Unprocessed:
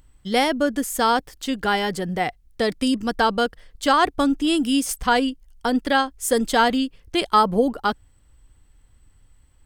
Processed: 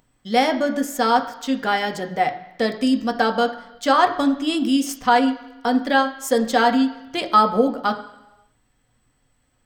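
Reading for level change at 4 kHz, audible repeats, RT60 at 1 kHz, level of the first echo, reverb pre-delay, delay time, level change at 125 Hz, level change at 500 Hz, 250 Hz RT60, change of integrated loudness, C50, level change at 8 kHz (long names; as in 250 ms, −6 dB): −1.5 dB, no echo audible, 0.95 s, no echo audible, 3 ms, no echo audible, can't be measured, +1.5 dB, 0.95 s, +1.5 dB, 12.5 dB, −3.5 dB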